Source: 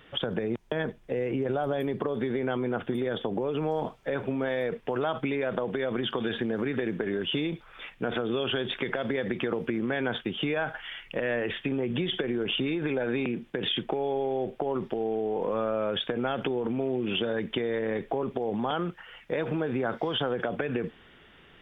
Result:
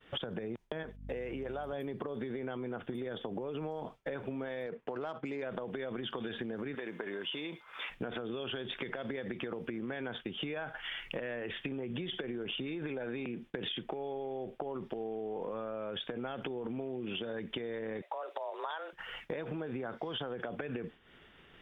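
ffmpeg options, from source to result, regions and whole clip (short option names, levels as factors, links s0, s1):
-filter_complex "[0:a]asettb=1/sr,asplit=3[s0][s1][s2];[s0]atrim=end=0.834[s3];[s1]atrim=start=0.83:end=1.73,asetpts=PTS-STARTPTS,afade=t=in:d=0.004:c=qsin,afade=t=out:st=0.896:d=0.004:c=qsin,agate=range=0.141:threshold=0.00355:ratio=16:release=100:detection=peak,lowshelf=f=340:g=-11.5,aeval=exprs='val(0)+0.00631*(sin(2*PI*50*n/s)+sin(2*PI*2*50*n/s)/2+sin(2*PI*3*50*n/s)/3+sin(2*PI*4*50*n/s)/4+sin(2*PI*5*50*n/s)/5)':c=same[s4];[s2]atrim=start=1.726[s5];[s3][s4]acrossfade=d=0.004:c1=hsin:c2=qsin[s6];[s6][s5]acrossfade=d=0.004:c1=qsin:c2=hsin,asettb=1/sr,asplit=3[s7][s8][s9];[s7]atrim=end=4.664[s10];[s8]atrim=start=4.66:end=5.42,asetpts=PTS-STARTPTS,afade=t=in:d=0.004:c=qsin,afade=t=out:st=0.756:d=0.004:c=qsin,highpass=f=180:p=1,adynamicsmooth=sensitivity=2:basefreq=2300[s11];[s9]atrim=start=5.416[s12];[s10][s11]acrossfade=d=0.004:c1=hsin:c2=qsin[s13];[s13][s12]acrossfade=d=0.004:c1=qsin:c2=hsin,asettb=1/sr,asplit=3[s14][s15][s16];[s14]atrim=end=6.754[s17];[s15]atrim=start=6.75:end=7.9,asetpts=PTS-STARTPTS,afade=t=in:d=0.004:c=qsin,afade=t=out:st=1.146:d=0.004:c=qsin,equalizer=f=1000:w=4.4:g=6,aeval=exprs='val(0)+0.00112*sin(2*PI*2100*n/s)':c=same,highpass=f=590:p=1[s18];[s16]atrim=start=7.896[s19];[s17][s18]acrossfade=d=0.004:c1=hsin:c2=qsin[s20];[s20][s19]acrossfade=d=0.004:c1=qsin:c2=hsin,asettb=1/sr,asplit=3[s21][s22][s23];[s21]atrim=end=18.024[s24];[s22]atrim=start=18.02:end=18.93,asetpts=PTS-STARTPTS,afade=t=in:d=0.004:c=qsin,afade=t=out:st=0.906:d=0.004:c=qsin,highpass=470,afreqshift=160[s25];[s23]atrim=start=18.926[s26];[s24][s25]acrossfade=d=0.004:c1=hsin:c2=qsin[s27];[s27][s26]acrossfade=d=0.004:c1=qsin:c2=hsin,acompressor=threshold=0.01:ratio=6,agate=range=0.0224:threshold=0.00398:ratio=3:detection=peak,volume=1.5"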